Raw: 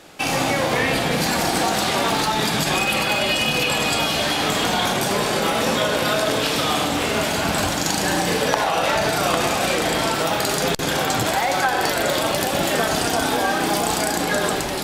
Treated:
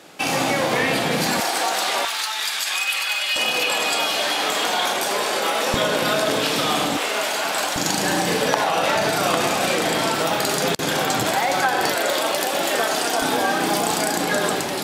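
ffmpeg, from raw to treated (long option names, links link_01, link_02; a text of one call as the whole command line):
ffmpeg -i in.wav -af "asetnsamples=nb_out_samples=441:pad=0,asendcmd='1.4 highpass f 550;2.05 highpass f 1500;3.36 highpass f 420;5.74 highpass f 140;6.97 highpass f 510;7.76 highpass f 130;11.95 highpass f 340;13.22 highpass f 140',highpass=140" out.wav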